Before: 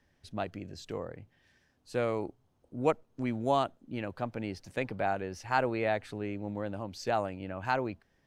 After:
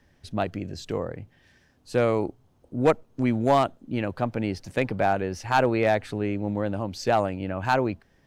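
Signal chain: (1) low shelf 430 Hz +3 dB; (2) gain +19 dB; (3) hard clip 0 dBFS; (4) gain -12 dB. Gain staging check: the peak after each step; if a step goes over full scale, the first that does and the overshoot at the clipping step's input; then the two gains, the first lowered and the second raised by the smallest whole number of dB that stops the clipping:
-11.5, +7.5, 0.0, -12.0 dBFS; step 2, 7.5 dB; step 2 +11 dB, step 4 -4 dB

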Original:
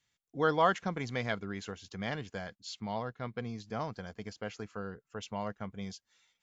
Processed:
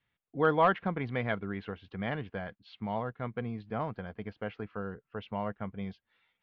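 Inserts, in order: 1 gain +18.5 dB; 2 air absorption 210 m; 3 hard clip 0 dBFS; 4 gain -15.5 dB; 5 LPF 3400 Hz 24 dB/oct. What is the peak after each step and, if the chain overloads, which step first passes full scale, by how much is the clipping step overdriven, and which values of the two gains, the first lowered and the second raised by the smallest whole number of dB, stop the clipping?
+5.5, +4.5, 0.0, -15.5, -15.0 dBFS; step 1, 4.5 dB; step 1 +13.5 dB, step 4 -10.5 dB

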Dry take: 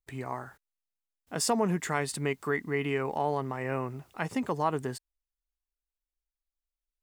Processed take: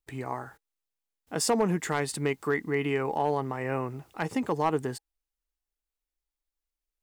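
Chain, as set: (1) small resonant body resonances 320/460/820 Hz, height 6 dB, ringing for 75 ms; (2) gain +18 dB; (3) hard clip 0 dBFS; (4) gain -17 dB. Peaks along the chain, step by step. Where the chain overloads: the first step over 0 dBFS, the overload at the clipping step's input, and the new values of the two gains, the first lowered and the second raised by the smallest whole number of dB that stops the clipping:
-13.0, +5.0, 0.0, -17.0 dBFS; step 2, 5.0 dB; step 2 +13 dB, step 4 -12 dB

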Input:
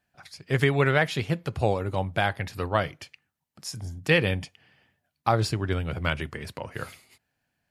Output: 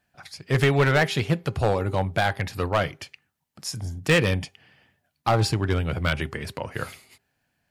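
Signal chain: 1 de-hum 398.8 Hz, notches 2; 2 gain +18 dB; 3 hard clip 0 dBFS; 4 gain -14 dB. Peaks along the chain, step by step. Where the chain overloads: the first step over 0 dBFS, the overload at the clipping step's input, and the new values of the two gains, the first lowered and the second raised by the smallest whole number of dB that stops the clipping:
-8.0, +10.0, 0.0, -14.0 dBFS; step 2, 10.0 dB; step 2 +8 dB, step 4 -4 dB

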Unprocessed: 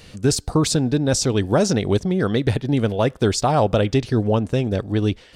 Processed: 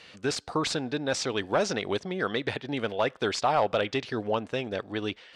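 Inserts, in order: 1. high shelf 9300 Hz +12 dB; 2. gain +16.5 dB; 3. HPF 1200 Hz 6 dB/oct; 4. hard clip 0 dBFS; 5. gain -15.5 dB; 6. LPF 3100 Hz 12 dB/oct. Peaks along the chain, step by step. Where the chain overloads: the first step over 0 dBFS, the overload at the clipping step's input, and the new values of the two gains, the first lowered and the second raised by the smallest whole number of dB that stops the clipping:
-6.5, +10.0, +9.5, 0.0, -15.5, -15.0 dBFS; step 2, 9.5 dB; step 2 +6.5 dB, step 5 -5.5 dB

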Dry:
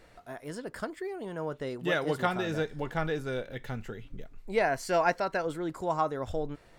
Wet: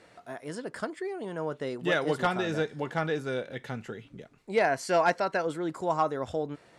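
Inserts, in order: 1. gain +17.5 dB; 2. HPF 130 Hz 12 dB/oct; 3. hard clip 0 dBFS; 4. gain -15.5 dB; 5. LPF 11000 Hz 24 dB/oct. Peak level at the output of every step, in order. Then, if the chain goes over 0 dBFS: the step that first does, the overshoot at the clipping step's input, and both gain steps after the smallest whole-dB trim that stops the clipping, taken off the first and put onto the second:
+4.0, +5.5, 0.0, -15.5, -15.0 dBFS; step 1, 5.5 dB; step 1 +11.5 dB, step 4 -9.5 dB

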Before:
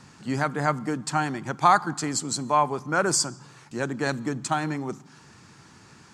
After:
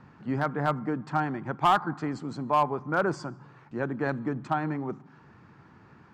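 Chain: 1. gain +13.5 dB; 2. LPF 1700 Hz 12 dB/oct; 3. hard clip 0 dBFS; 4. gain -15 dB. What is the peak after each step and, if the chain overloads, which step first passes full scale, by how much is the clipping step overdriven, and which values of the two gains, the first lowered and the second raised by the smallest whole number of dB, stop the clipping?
+8.0, +6.5, 0.0, -15.0 dBFS; step 1, 6.5 dB; step 1 +6.5 dB, step 4 -8 dB

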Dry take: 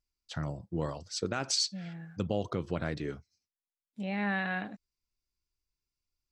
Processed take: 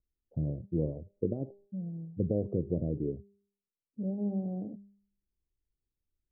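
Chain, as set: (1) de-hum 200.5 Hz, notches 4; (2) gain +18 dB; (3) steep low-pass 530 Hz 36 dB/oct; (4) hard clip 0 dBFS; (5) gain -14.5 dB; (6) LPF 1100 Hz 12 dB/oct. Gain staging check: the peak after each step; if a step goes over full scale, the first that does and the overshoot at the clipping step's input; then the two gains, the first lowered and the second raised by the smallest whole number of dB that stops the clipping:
-18.5, -0.5, -3.0, -3.0, -17.5, -17.5 dBFS; no overload

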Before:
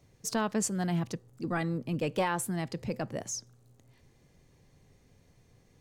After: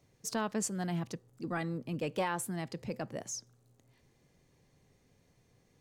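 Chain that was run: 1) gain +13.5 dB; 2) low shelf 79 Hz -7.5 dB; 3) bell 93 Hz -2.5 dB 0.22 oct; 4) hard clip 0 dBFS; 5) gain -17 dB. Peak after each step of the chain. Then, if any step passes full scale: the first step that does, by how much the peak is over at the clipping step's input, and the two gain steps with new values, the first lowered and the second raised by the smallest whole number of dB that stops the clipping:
-4.0, -4.0, -4.0, -4.0, -21.0 dBFS; no overload

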